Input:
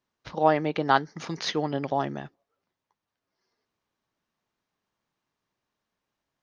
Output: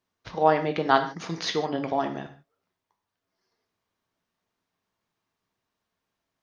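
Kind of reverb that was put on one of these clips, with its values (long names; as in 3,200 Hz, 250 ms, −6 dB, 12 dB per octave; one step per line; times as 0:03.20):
reverb whose tail is shaped and stops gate 180 ms falling, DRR 5.5 dB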